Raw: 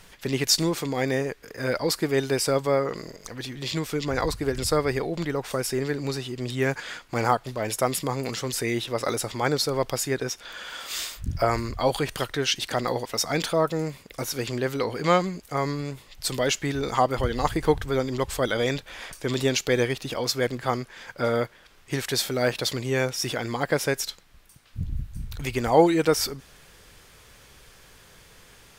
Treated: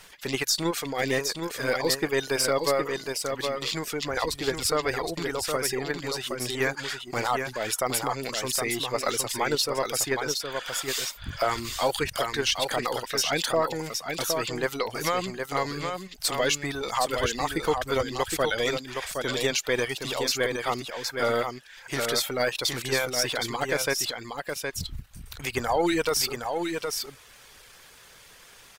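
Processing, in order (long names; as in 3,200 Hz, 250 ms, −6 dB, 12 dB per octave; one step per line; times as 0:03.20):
gain on one half-wave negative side −3 dB
low-shelf EQ 380 Hz −11 dB
in parallel at +1 dB: output level in coarse steps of 10 dB
on the sum: brickwall limiter −13.5 dBFS, peak gain reduction 10.5 dB
reverb reduction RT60 0.64 s
on a send: single-tap delay 766 ms −5.5 dB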